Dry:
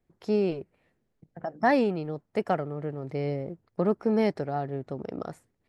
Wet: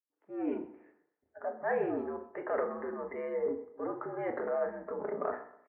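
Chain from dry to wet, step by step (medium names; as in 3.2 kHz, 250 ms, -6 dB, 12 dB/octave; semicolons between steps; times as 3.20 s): fade-in on the opening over 0.64 s; spectral noise reduction 15 dB; reverse; compression 6:1, threshold -37 dBFS, peak gain reduction 18 dB; reverse; transient shaper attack -6 dB, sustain +9 dB; in parallel at -7 dB: saturation -36.5 dBFS, distortion -15 dB; on the sum: feedback delay 127 ms, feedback 36%, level -18 dB; mistuned SSB -74 Hz 410–2100 Hz; doubling 37 ms -13 dB; FDN reverb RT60 0.51 s, low-frequency decay 0.9×, high-frequency decay 0.7×, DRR 4 dB; trim +7 dB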